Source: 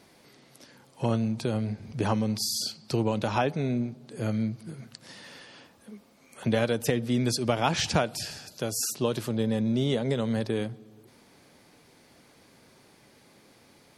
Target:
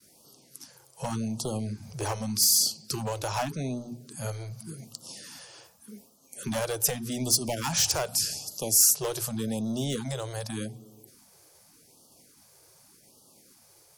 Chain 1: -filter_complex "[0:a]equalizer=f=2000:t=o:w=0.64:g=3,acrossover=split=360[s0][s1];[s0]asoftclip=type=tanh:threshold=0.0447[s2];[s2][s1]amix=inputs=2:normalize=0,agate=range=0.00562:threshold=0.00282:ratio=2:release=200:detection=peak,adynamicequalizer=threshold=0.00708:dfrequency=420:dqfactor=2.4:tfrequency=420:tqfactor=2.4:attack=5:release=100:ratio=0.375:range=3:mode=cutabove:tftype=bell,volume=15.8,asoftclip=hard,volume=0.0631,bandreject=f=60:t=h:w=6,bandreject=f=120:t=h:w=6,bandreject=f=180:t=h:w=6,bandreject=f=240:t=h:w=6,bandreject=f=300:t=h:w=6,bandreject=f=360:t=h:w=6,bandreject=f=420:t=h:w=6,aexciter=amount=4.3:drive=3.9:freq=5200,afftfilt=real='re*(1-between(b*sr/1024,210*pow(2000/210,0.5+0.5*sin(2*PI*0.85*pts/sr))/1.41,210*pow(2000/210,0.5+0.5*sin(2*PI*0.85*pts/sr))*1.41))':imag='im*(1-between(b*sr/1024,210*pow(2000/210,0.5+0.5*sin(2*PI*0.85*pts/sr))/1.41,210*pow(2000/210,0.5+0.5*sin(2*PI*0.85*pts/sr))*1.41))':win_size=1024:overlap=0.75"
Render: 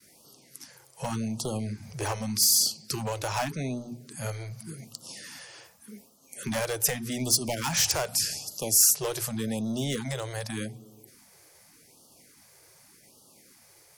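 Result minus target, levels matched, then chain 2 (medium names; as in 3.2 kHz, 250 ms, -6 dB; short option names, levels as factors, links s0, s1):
2 kHz band +3.5 dB
-filter_complex "[0:a]equalizer=f=2000:t=o:w=0.64:g=-5,acrossover=split=360[s0][s1];[s0]asoftclip=type=tanh:threshold=0.0447[s2];[s2][s1]amix=inputs=2:normalize=0,agate=range=0.00562:threshold=0.00282:ratio=2:release=200:detection=peak,adynamicequalizer=threshold=0.00708:dfrequency=420:dqfactor=2.4:tfrequency=420:tqfactor=2.4:attack=5:release=100:ratio=0.375:range=3:mode=cutabove:tftype=bell,volume=15.8,asoftclip=hard,volume=0.0631,bandreject=f=60:t=h:w=6,bandreject=f=120:t=h:w=6,bandreject=f=180:t=h:w=6,bandreject=f=240:t=h:w=6,bandreject=f=300:t=h:w=6,bandreject=f=360:t=h:w=6,bandreject=f=420:t=h:w=6,aexciter=amount=4.3:drive=3.9:freq=5200,afftfilt=real='re*(1-between(b*sr/1024,210*pow(2000/210,0.5+0.5*sin(2*PI*0.85*pts/sr))/1.41,210*pow(2000/210,0.5+0.5*sin(2*PI*0.85*pts/sr))*1.41))':imag='im*(1-between(b*sr/1024,210*pow(2000/210,0.5+0.5*sin(2*PI*0.85*pts/sr))/1.41,210*pow(2000/210,0.5+0.5*sin(2*PI*0.85*pts/sr))*1.41))':win_size=1024:overlap=0.75"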